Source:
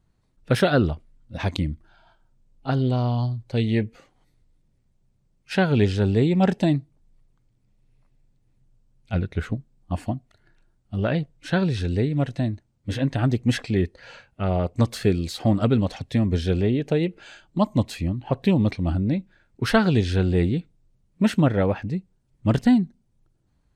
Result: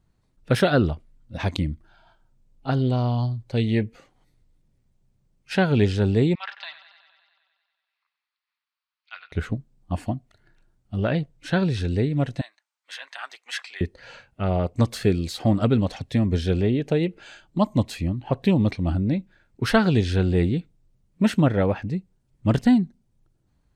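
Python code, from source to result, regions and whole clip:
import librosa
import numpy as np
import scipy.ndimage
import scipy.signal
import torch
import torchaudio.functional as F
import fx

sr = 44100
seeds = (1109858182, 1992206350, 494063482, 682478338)

y = fx.chain(x, sr, fx.ellip_bandpass(low_hz=1100.0, high_hz=4600.0, order=3, stop_db=60),
    fx.echo_warbled(ms=93, feedback_pct=71, rate_hz=2.8, cents=60, wet_db=-14), at=(6.35, 9.32))
y = fx.chain(y, sr, fx.highpass(hz=1000.0, slope=24),
    fx.high_shelf(hz=7700.0, db=-5.5), at=(12.41, 13.81))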